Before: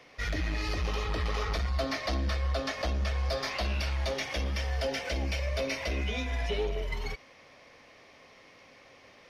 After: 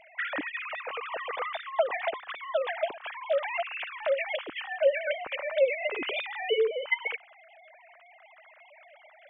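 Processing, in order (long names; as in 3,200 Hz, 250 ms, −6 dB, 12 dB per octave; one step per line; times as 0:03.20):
three sine waves on the formant tracks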